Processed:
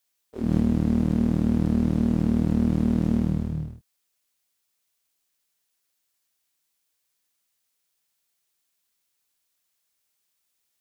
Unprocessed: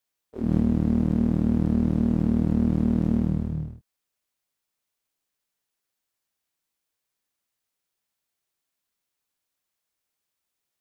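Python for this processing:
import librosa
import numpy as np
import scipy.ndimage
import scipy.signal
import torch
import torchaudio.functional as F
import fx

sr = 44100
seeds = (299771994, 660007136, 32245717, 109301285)

y = fx.high_shelf(x, sr, hz=2200.0, db=8.0)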